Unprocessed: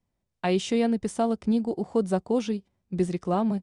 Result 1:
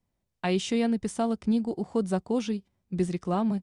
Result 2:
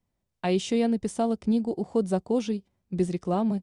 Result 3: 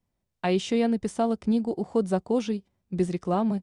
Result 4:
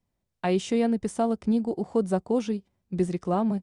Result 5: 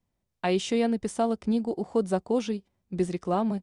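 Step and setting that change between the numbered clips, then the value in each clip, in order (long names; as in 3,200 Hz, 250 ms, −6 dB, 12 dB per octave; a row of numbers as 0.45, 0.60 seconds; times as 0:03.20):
dynamic equaliser, frequency: 540, 1,400, 9,800, 3,700, 130 Hertz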